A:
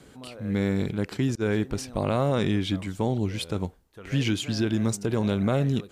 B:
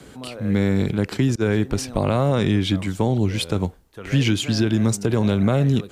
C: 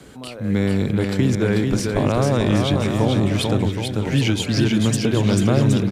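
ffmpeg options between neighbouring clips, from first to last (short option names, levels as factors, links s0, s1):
-filter_complex "[0:a]acrossover=split=150[s0][s1];[s1]acompressor=threshold=0.0447:ratio=2[s2];[s0][s2]amix=inputs=2:normalize=0,volume=2.37"
-af "aecho=1:1:440|770|1018|1203|1342:0.631|0.398|0.251|0.158|0.1"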